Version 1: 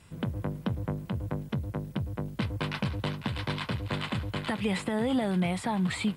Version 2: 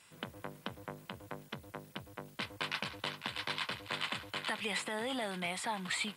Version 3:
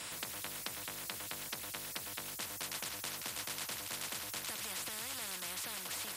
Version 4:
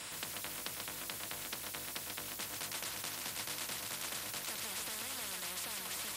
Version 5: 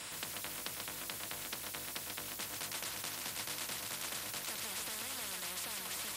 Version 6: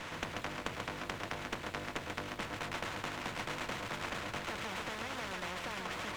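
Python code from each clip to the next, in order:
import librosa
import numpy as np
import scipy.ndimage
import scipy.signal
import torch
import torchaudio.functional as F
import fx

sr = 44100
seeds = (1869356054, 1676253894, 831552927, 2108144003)

y1 = fx.highpass(x, sr, hz=1400.0, slope=6)
y1 = F.gain(torch.from_numpy(y1), 1.0).numpy()
y2 = fx.notch_comb(y1, sr, f0_hz=400.0)
y2 = fx.spectral_comp(y2, sr, ratio=10.0)
y2 = F.gain(torch.from_numpy(y2), 3.5).numpy()
y3 = y2 + 10.0 ** (-4.5 / 20.0) * np.pad(y2, (int(137 * sr / 1000.0), 0))[:len(y2)]
y3 = F.gain(torch.from_numpy(y3), -1.0).numpy()
y4 = y3
y5 = fx.air_absorb(y4, sr, metres=300.0)
y5 = fx.running_max(y5, sr, window=5)
y5 = F.gain(torch.from_numpy(y5), 9.0).numpy()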